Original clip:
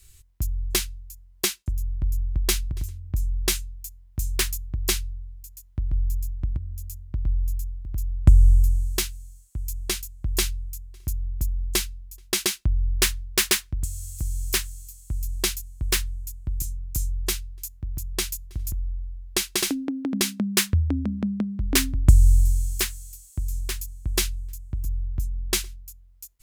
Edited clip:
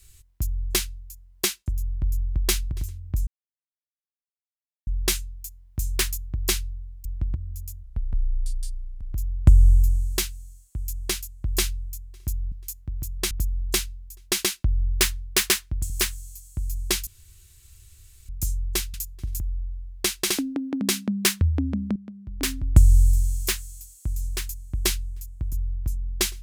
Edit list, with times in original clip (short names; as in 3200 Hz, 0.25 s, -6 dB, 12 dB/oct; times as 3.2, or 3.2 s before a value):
3.27 insert silence 1.60 s
5.45–6.27 cut
7.05–7.94 speed 68%
13.91–14.43 cut
15.6–16.82 room tone
17.47–18.26 move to 11.32
21.28–22.07 fade in quadratic, from -15 dB